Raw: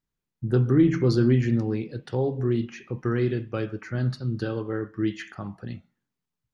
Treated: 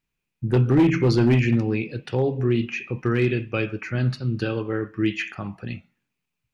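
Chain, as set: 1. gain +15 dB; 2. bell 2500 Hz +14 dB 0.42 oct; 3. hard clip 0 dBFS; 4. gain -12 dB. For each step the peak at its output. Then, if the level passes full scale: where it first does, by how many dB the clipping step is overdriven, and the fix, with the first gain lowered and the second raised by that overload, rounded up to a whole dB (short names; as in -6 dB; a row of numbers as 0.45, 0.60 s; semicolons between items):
+6.0, +6.5, 0.0, -12.0 dBFS; step 1, 6.5 dB; step 1 +8 dB, step 4 -5 dB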